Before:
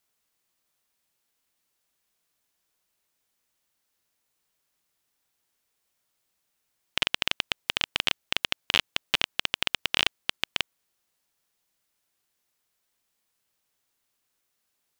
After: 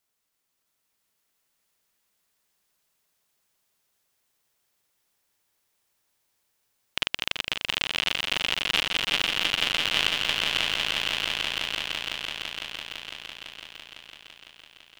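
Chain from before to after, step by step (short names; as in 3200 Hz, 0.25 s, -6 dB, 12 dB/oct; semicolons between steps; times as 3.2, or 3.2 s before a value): swelling echo 0.168 s, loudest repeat 5, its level -5.5 dB; gain -2 dB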